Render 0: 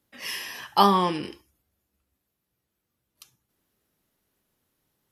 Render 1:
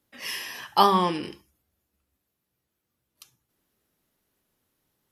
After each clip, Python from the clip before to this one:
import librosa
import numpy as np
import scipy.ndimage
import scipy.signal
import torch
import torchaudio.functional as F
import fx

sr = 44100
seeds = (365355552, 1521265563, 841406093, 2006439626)

y = fx.hum_notches(x, sr, base_hz=50, count=4)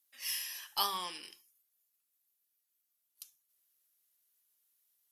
y = np.diff(x, prepend=0.0)
y = fx.cheby_harmonics(y, sr, harmonics=(8,), levels_db=(-36,), full_scale_db=-16.0)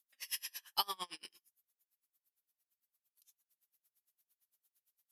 y = x * 10.0 ** (-33 * (0.5 - 0.5 * np.cos(2.0 * np.pi * 8.8 * np.arange(len(x)) / sr)) / 20.0)
y = y * librosa.db_to_amplitude(2.0)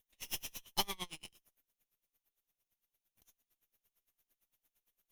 y = fx.lower_of_two(x, sr, delay_ms=0.32)
y = y * librosa.db_to_amplitude(1.0)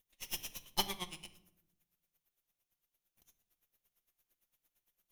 y = fx.room_shoebox(x, sr, seeds[0], volume_m3=2200.0, walls='furnished', distance_m=0.91)